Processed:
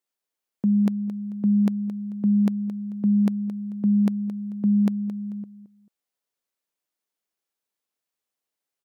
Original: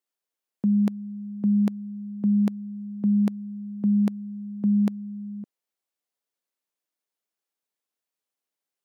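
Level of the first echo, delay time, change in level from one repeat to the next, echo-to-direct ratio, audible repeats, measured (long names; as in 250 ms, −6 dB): −13.0 dB, 220 ms, −10.5 dB, −12.5 dB, 2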